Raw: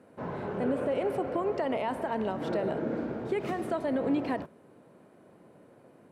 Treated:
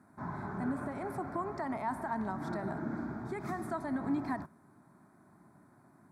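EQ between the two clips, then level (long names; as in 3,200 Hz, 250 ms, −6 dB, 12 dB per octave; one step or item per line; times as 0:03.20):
phaser with its sweep stopped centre 1,200 Hz, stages 4
0.0 dB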